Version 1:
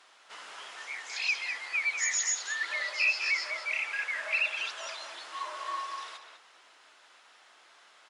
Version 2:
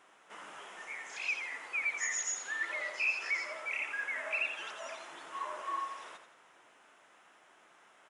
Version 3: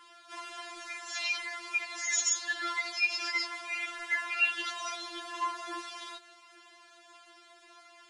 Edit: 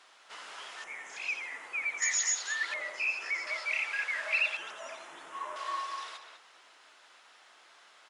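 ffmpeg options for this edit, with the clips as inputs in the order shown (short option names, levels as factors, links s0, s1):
-filter_complex "[1:a]asplit=3[s0][s1][s2];[0:a]asplit=4[s3][s4][s5][s6];[s3]atrim=end=0.842[s7];[s0]atrim=start=0.838:end=2.022[s8];[s4]atrim=start=2.018:end=2.742[s9];[s1]atrim=start=2.738:end=3.472[s10];[s5]atrim=start=3.468:end=4.572[s11];[s2]atrim=start=4.568:end=5.562[s12];[s6]atrim=start=5.558[s13];[s7][s8]acrossfade=d=0.004:c1=hsin:c2=hsin[s14];[s14][s9]acrossfade=d=0.004:c1=hsin:c2=hsin[s15];[s15][s10]acrossfade=d=0.004:c1=hsin:c2=hsin[s16];[s16][s11]acrossfade=d=0.004:c1=hsin:c2=hsin[s17];[s17][s12]acrossfade=d=0.004:c1=hsin:c2=hsin[s18];[s18][s13]acrossfade=d=0.004:c1=hsin:c2=hsin"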